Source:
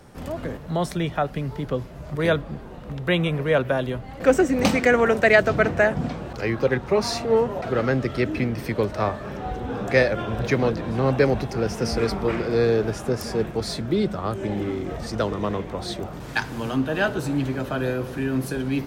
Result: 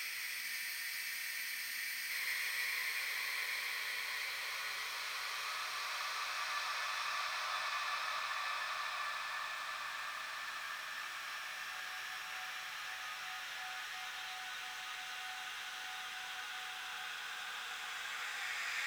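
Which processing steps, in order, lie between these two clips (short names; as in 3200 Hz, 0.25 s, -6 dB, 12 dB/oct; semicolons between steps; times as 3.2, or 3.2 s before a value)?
Bessel high-pass 2400 Hz, order 4; upward compressor, threshold -41 dBFS; crackle 220/s -45 dBFS; Paulstretch 15×, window 0.50 s, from 8.55; diffused feedback echo 0.578 s, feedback 74%, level -7.5 dB; spectral freeze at 0.45, 1.66 s; gain +1.5 dB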